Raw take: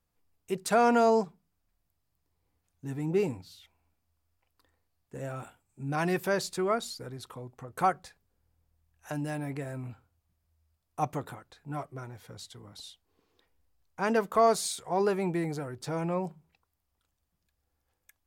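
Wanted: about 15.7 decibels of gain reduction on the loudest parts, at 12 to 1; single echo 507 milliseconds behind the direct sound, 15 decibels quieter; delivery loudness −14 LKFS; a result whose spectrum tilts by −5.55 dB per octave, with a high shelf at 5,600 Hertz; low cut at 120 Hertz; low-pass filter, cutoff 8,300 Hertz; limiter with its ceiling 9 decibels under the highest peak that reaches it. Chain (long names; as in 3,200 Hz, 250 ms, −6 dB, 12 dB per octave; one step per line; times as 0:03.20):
high-pass filter 120 Hz
low-pass filter 8,300 Hz
high-shelf EQ 5,600 Hz −8 dB
downward compressor 12 to 1, threshold −35 dBFS
brickwall limiter −32.5 dBFS
single-tap delay 507 ms −15 dB
level +29.5 dB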